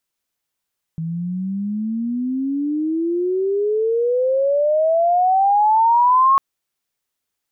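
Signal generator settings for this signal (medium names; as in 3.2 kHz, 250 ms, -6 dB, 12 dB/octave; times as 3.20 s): sweep logarithmic 160 Hz -> 1.1 kHz -22 dBFS -> -10 dBFS 5.40 s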